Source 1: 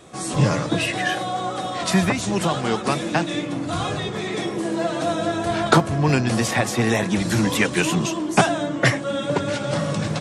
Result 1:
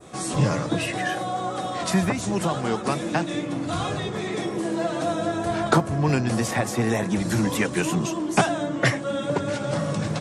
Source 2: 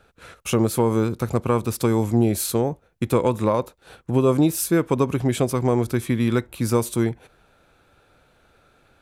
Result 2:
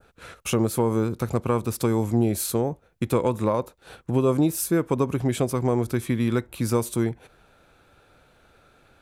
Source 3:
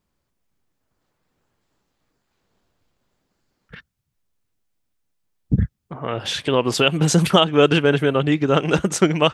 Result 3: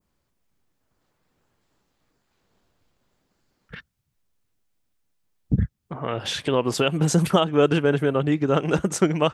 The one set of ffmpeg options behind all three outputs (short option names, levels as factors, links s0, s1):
-filter_complex "[0:a]adynamicequalizer=threshold=0.0141:dfrequency=3300:dqfactor=0.79:tfrequency=3300:tqfactor=0.79:attack=5:release=100:ratio=0.375:range=3.5:mode=cutabove:tftype=bell,asplit=2[s0][s1];[s1]acompressor=threshold=0.0316:ratio=6,volume=0.75[s2];[s0][s2]amix=inputs=2:normalize=0,volume=0.631"